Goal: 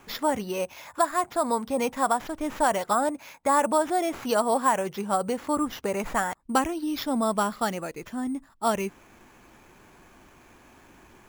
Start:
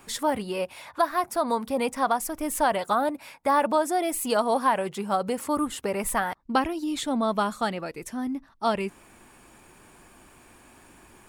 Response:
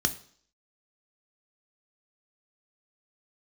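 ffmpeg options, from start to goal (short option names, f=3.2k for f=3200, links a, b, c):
-af "lowpass=6k,acrusher=samples=5:mix=1:aa=0.000001"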